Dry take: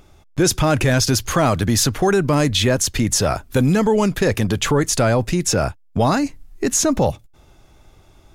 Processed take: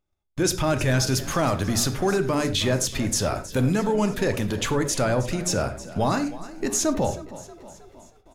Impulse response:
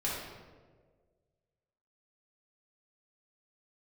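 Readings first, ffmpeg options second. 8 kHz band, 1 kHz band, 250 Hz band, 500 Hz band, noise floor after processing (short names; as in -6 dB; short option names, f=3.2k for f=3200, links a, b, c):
-6.0 dB, -5.5 dB, -6.0 dB, -5.5 dB, -60 dBFS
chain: -filter_complex "[0:a]bandreject=f=59.22:t=h:w=4,bandreject=f=118.44:t=h:w=4,bandreject=f=177.66:t=h:w=4,bandreject=f=236.88:t=h:w=4,bandreject=f=296.1:t=h:w=4,bandreject=f=355.32:t=h:w=4,bandreject=f=414.54:t=h:w=4,bandreject=f=473.76:t=h:w=4,asplit=6[a][b][c][d][e][f];[b]adelay=317,afreqshift=34,volume=-16.5dB[g];[c]adelay=634,afreqshift=68,volume=-21.5dB[h];[d]adelay=951,afreqshift=102,volume=-26.6dB[i];[e]adelay=1268,afreqshift=136,volume=-31.6dB[j];[f]adelay=1585,afreqshift=170,volume=-36.6dB[k];[a][g][h][i][j][k]amix=inputs=6:normalize=0,agate=range=-26dB:threshold=-44dB:ratio=16:detection=peak,asplit=2[l][m];[1:a]atrim=start_sample=2205,afade=t=out:st=0.16:d=0.01,atrim=end_sample=7497[n];[m][n]afir=irnorm=-1:irlink=0,volume=-11dB[o];[l][o]amix=inputs=2:normalize=0,volume=-8dB"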